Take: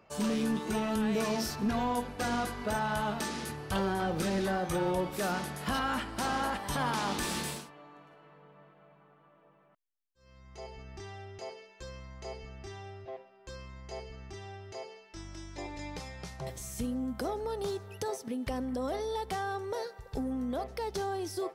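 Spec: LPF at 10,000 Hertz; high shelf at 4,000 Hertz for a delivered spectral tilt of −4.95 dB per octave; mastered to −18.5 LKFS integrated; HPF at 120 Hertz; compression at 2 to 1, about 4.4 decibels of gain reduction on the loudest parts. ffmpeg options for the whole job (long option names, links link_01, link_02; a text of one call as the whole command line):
ffmpeg -i in.wav -af "highpass=120,lowpass=10000,highshelf=frequency=4000:gain=-5,acompressor=threshold=-35dB:ratio=2,volume=20dB" out.wav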